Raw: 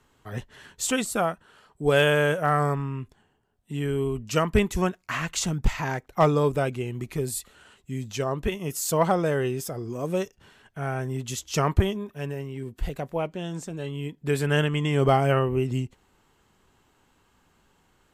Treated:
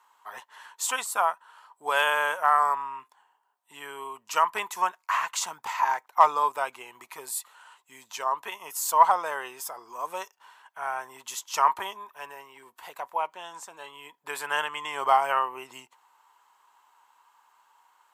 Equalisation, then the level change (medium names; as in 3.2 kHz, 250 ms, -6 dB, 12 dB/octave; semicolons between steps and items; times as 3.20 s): resonant high-pass 960 Hz, resonance Q 6.1; treble shelf 11 kHz +9 dB; -3.5 dB